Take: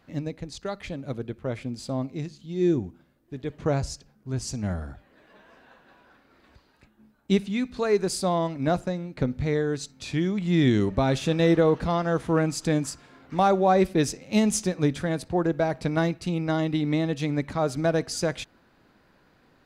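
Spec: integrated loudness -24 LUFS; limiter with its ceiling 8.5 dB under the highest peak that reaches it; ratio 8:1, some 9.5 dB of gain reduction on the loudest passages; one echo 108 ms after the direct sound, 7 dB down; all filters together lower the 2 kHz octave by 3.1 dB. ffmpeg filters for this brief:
-af "equalizer=f=2000:t=o:g=-4,acompressor=threshold=0.0501:ratio=8,alimiter=level_in=1.12:limit=0.0631:level=0:latency=1,volume=0.891,aecho=1:1:108:0.447,volume=3.16"

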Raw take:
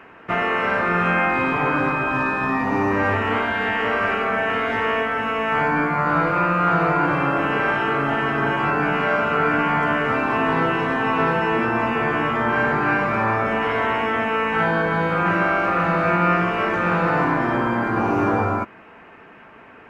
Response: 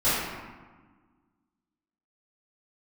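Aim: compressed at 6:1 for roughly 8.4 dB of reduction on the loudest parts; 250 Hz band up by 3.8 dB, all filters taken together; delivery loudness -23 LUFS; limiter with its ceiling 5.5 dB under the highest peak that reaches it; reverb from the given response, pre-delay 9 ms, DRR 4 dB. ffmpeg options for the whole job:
-filter_complex "[0:a]equalizer=f=250:t=o:g=5,acompressor=threshold=0.0708:ratio=6,alimiter=limit=0.112:level=0:latency=1,asplit=2[s0][s1];[1:a]atrim=start_sample=2205,adelay=9[s2];[s1][s2]afir=irnorm=-1:irlink=0,volume=0.106[s3];[s0][s3]amix=inputs=2:normalize=0,volume=1.5"

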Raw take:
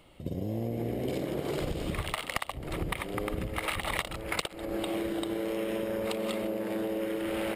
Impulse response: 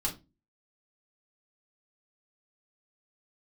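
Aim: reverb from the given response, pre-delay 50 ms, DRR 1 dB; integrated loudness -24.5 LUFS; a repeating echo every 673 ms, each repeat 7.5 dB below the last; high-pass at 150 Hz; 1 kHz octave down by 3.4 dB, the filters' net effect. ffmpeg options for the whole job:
-filter_complex "[0:a]highpass=150,equalizer=f=1000:t=o:g=-4.5,aecho=1:1:673|1346|2019|2692|3365:0.422|0.177|0.0744|0.0312|0.0131,asplit=2[s0][s1];[1:a]atrim=start_sample=2205,adelay=50[s2];[s1][s2]afir=irnorm=-1:irlink=0,volume=0.562[s3];[s0][s3]amix=inputs=2:normalize=0,volume=1.88"

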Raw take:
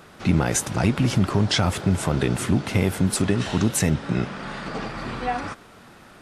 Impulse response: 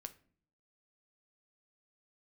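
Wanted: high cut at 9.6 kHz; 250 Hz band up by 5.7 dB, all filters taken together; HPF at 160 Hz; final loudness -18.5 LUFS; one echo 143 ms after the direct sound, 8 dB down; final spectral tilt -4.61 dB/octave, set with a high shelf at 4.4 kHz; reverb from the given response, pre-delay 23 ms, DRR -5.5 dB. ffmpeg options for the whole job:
-filter_complex "[0:a]highpass=160,lowpass=9600,equalizer=f=250:t=o:g=9,highshelf=f=4400:g=8.5,aecho=1:1:143:0.398,asplit=2[s0][s1];[1:a]atrim=start_sample=2205,adelay=23[s2];[s1][s2]afir=irnorm=-1:irlink=0,volume=3.35[s3];[s0][s3]amix=inputs=2:normalize=0,volume=0.501"

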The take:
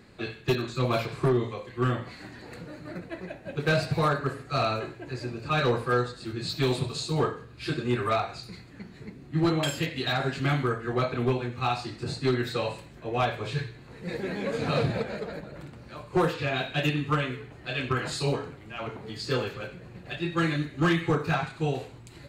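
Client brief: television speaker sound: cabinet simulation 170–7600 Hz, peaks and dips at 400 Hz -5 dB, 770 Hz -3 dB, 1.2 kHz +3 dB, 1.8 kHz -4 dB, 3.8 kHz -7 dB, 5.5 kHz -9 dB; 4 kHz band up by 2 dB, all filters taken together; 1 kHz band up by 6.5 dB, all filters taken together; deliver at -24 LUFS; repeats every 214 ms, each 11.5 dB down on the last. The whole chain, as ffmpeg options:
-af "highpass=f=170:w=0.5412,highpass=f=170:w=1.3066,equalizer=f=400:t=q:w=4:g=-5,equalizer=f=770:t=q:w=4:g=-3,equalizer=f=1200:t=q:w=4:g=3,equalizer=f=1800:t=q:w=4:g=-4,equalizer=f=3800:t=q:w=4:g=-7,equalizer=f=5500:t=q:w=4:g=-9,lowpass=f=7600:w=0.5412,lowpass=f=7600:w=1.3066,equalizer=f=1000:t=o:g=7.5,equalizer=f=4000:t=o:g=8,aecho=1:1:214|428|642:0.266|0.0718|0.0194,volume=1.41"

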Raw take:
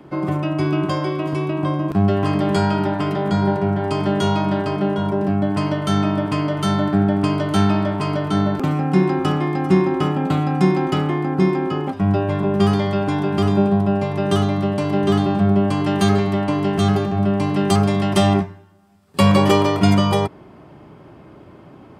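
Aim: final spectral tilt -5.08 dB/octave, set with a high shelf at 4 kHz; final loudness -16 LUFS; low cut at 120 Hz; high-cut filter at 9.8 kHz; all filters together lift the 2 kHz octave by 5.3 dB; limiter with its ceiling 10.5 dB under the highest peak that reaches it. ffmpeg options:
-af "highpass=120,lowpass=9800,equalizer=f=2000:t=o:g=4.5,highshelf=f=4000:g=9,volume=1.78,alimiter=limit=0.473:level=0:latency=1"

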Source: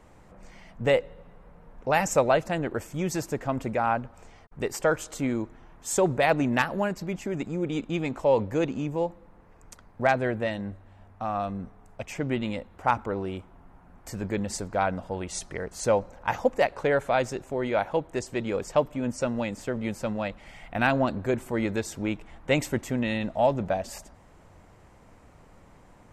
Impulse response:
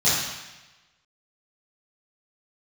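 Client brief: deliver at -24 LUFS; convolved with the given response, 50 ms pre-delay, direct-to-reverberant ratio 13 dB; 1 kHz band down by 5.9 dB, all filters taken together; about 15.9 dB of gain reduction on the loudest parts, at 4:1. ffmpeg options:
-filter_complex "[0:a]equalizer=f=1000:t=o:g=-8.5,acompressor=threshold=0.0112:ratio=4,asplit=2[s0][s1];[1:a]atrim=start_sample=2205,adelay=50[s2];[s1][s2]afir=irnorm=-1:irlink=0,volume=0.0316[s3];[s0][s3]amix=inputs=2:normalize=0,volume=7.5"

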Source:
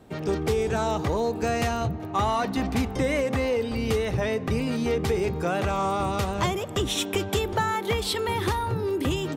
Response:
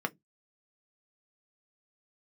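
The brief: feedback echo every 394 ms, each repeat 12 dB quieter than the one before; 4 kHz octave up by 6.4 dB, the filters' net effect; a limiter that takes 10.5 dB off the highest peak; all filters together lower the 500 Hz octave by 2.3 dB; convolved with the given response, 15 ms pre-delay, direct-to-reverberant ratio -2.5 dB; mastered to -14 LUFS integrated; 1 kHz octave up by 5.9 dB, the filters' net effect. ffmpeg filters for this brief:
-filter_complex "[0:a]equalizer=f=500:t=o:g=-5,equalizer=f=1000:t=o:g=8.5,equalizer=f=4000:t=o:g=7.5,alimiter=limit=0.126:level=0:latency=1,aecho=1:1:394|788|1182:0.251|0.0628|0.0157,asplit=2[s0][s1];[1:a]atrim=start_sample=2205,adelay=15[s2];[s1][s2]afir=irnorm=-1:irlink=0,volume=0.708[s3];[s0][s3]amix=inputs=2:normalize=0,volume=2.66"

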